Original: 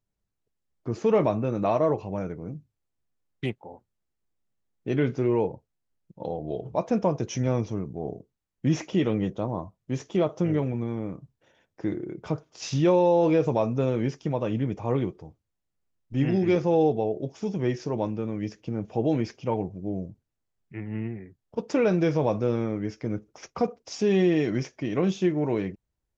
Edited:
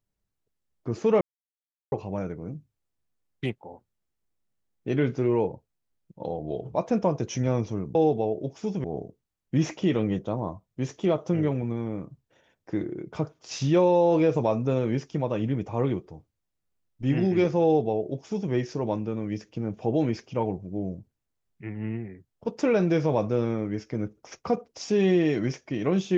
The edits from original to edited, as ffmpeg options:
-filter_complex "[0:a]asplit=5[a][b][c][d][e];[a]atrim=end=1.21,asetpts=PTS-STARTPTS,afade=t=out:st=1.206:d=0.004:c=hsin[f];[b]atrim=start=1.21:end=1.92,asetpts=PTS-STARTPTS,volume=0[g];[c]atrim=start=1.92:end=7.952,asetpts=PTS-STARTPTS,afade=t=in:d=0.004:c=hsin[h];[d]atrim=start=16.738:end=17.632[i];[e]atrim=start=7.948[j];[f][g][h]concat=n=3:v=0:a=1[k];[k][i]acrossfade=d=0.004:c1=hsin:c2=hsin[l];[l][j]acrossfade=d=0.004:c1=hsin:c2=hsin"

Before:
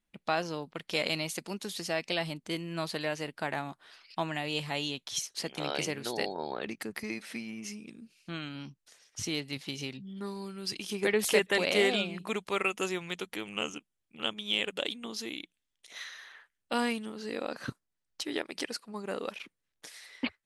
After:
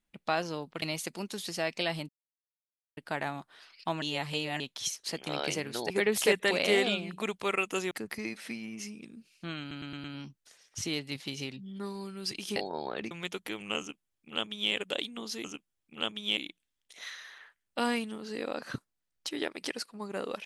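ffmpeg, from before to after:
-filter_complex "[0:a]asplit=16[a][b][c][d][e][f][g][h][i][j][k][l][m][n][o][p];[a]atrim=end=0.822[q];[b]atrim=start=1.128:end=2.4,asetpts=PTS-STARTPTS,afade=t=out:st=1.268:d=0.004:c=hsin[r];[c]atrim=start=2.4:end=3.28,asetpts=PTS-STARTPTS,volume=0[s];[d]atrim=start=3.28:end=4.332,asetpts=PTS-STARTPTS,afade=t=in:d=0.004:c=hsin[t];[e]atrim=start=4.328:end=4.912,asetpts=PTS-STARTPTS,areverse[u];[f]atrim=start=4.908:end=6.212[v];[g]atrim=start=10.968:end=12.982[w];[h]atrim=start=6.758:end=8.562[x];[i]atrim=start=8.448:end=8.562[y];[j]atrim=start=8.448:end=8.562[z];[k]atrim=start=8.448:end=8.562[aa];[l]atrim=start=8.448:end=10.972[ab];[m]atrim=start=6.208:end=6.762[ac];[n]atrim=start=12.978:end=15.312[ad];[o]atrim=start=13.658:end=14.592[ae];[p]atrim=start=15.308[af];[r][s][t]concat=n=3:v=0:a=1[ag];[q][ag]acrossfade=d=0.004:c1=hsin:c2=hsin[ah];[ah][u]acrossfade=d=0.004:c1=hsin:c2=hsin[ai];[ai][v]acrossfade=d=0.004:c1=hsin:c2=hsin[aj];[aj][w]acrossfade=d=0.004:c1=hsin:c2=hsin[ak];[ak][x]acrossfade=d=0.004:c1=hsin:c2=hsin[al];[al][y]acrossfade=d=0.004:c1=hsin:c2=hsin[am];[am][z]acrossfade=d=0.004:c1=hsin:c2=hsin[an];[an][aa]acrossfade=d=0.004:c1=hsin:c2=hsin[ao];[ao][ab]acrossfade=d=0.004:c1=hsin:c2=hsin[ap];[ap][ac]acrossfade=d=0.004:c1=hsin:c2=hsin[aq];[aq][ad]acrossfade=d=0.004:c1=hsin:c2=hsin[ar];[ar][ae]acrossfade=d=0.004:c1=hsin:c2=hsin[as];[as][af]acrossfade=d=0.004:c1=hsin:c2=hsin"

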